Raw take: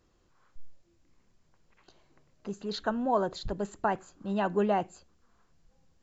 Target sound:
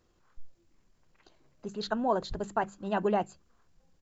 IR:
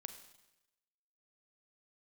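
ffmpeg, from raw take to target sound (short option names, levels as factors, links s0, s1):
-af "atempo=1.5,bandreject=f=50:t=h:w=6,bandreject=f=100:t=h:w=6,bandreject=f=150:t=h:w=6,bandreject=f=200:t=h:w=6"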